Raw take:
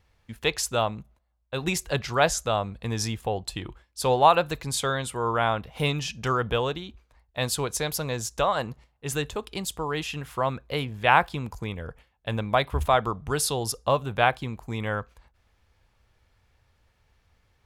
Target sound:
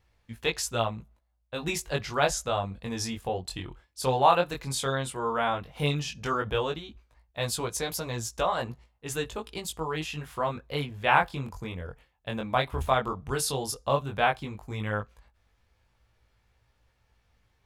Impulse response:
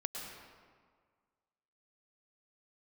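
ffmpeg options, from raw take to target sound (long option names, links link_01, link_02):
-af "flanger=delay=17:depth=5.9:speed=0.12"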